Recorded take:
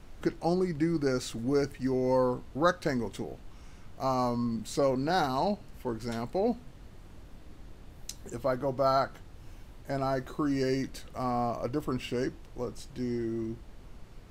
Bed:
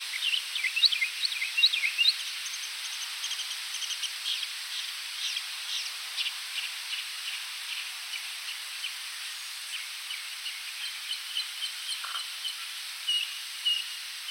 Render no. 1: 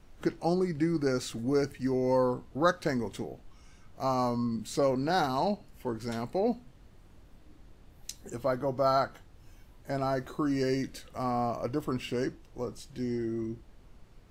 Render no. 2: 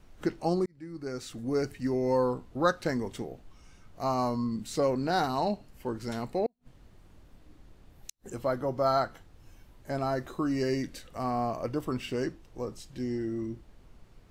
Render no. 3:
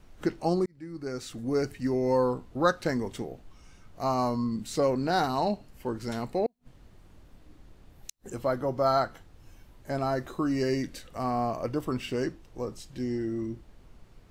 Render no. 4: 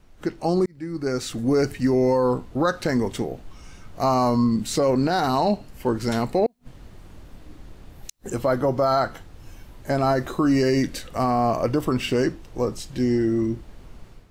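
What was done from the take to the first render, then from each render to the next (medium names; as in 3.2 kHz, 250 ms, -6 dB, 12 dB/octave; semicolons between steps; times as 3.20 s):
noise print and reduce 6 dB
0.66–1.74 s: fade in; 6.46–8.30 s: inverted gate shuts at -26 dBFS, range -42 dB
trim +1.5 dB
level rider gain up to 10 dB; peak limiter -12 dBFS, peak gain reduction 9 dB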